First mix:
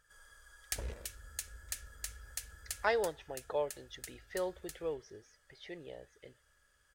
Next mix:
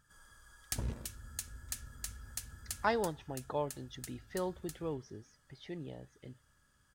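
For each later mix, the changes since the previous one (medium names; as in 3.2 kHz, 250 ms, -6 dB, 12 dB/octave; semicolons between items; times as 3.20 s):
master: add graphic EQ 125/250/500/1000/2000 Hz +11/+11/-7/+5/-5 dB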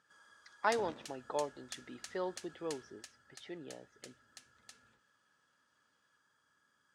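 speech: entry -2.20 s; master: add band-pass 300–5300 Hz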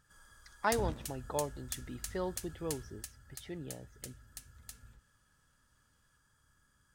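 master: remove band-pass 300–5300 Hz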